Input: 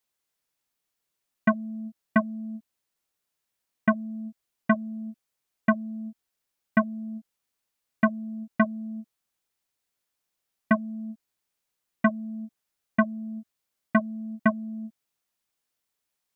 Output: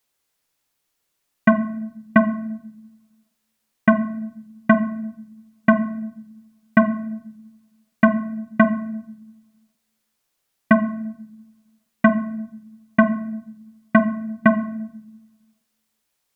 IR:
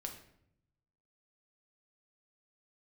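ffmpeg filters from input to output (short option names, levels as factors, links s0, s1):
-filter_complex "[0:a]asplit=2[s0][s1];[1:a]atrim=start_sample=2205,asetrate=38367,aresample=44100[s2];[s1][s2]afir=irnorm=-1:irlink=0,volume=1[s3];[s0][s3]amix=inputs=2:normalize=0,volume=1.41"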